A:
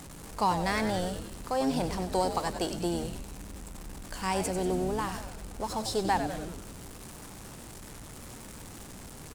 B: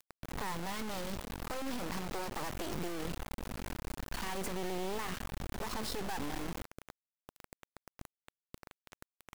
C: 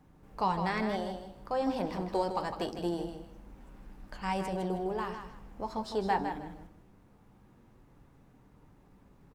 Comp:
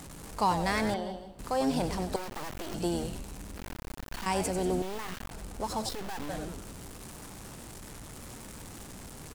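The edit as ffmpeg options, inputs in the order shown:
-filter_complex "[1:a]asplit=4[a][b][c][d];[0:a]asplit=6[e][f][g][h][i][j];[e]atrim=end=0.942[k];[2:a]atrim=start=0.938:end=1.392[l];[f]atrim=start=1.388:end=2.162[m];[a]atrim=start=2.158:end=2.742[n];[g]atrim=start=2.738:end=3.572[o];[b]atrim=start=3.568:end=4.262[p];[h]atrim=start=4.258:end=4.822[q];[c]atrim=start=4.818:end=5.312[r];[i]atrim=start=5.308:end=5.892[s];[d]atrim=start=5.888:end=6.292[t];[j]atrim=start=6.288[u];[k][l]acrossfade=d=0.004:c1=hsin:c2=hsin[v];[v][m]acrossfade=d=0.004:c1=hsin:c2=hsin[w];[w][n]acrossfade=d=0.004:c1=hsin:c2=hsin[x];[x][o]acrossfade=d=0.004:c1=hsin:c2=hsin[y];[y][p]acrossfade=d=0.004:c1=hsin:c2=hsin[z];[z][q]acrossfade=d=0.004:c1=hsin:c2=hsin[aa];[aa][r]acrossfade=d=0.004:c1=hsin:c2=hsin[ab];[ab][s]acrossfade=d=0.004:c1=hsin:c2=hsin[ac];[ac][t]acrossfade=d=0.004:c1=hsin:c2=hsin[ad];[ad][u]acrossfade=d=0.004:c1=hsin:c2=hsin"

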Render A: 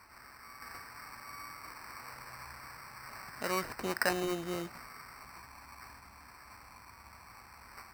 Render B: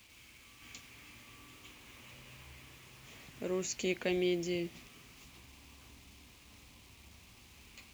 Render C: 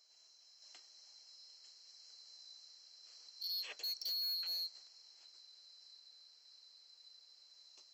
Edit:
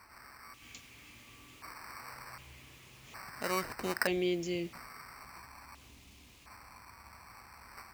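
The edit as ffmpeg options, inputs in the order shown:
-filter_complex "[1:a]asplit=4[a][b][c][d];[0:a]asplit=5[e][f][g][h][i];[e]atrim=end=0.542[j];[a]atrim=start=0.538:end=1.622[k];[f]atrim=start=1.618:end=2.382[l];[b]atrim=start=2.378:end=3.142[m];[g]atrim=start=3.138:end=4.072[n];[c]atrim=start=4.068:end=4.732[o];[h]atrim=start=4.728:end=5.752[p];[d]atrim=start=5.748:end=6.462[q];[i]atrim=start=6.458[r];[j][k]acrossfade=d=0.004:c1=hsin:c2=hsin[s];[s][l]acrossfade=d=0.004:c1=hsin:c2=hsin[t];[t][m]acrossfade=d=0.004:c1=hsin:c2=hsin[u];[u][n]acrossfade=d=0.004:c1=hsin:c2=hsin[v];[v][o]acrossfade=d=0.004:c1=hsin:c2=hsin[w];[w][p]acrossfade=d=0.004:c1=hsin:c2=hsin[x];[x][q]acrossfade=d=0.004:c1=hsin:c2=hsin[y];[y][r]acrossfade=d=0.004:c1=hsin:c2=hsin"

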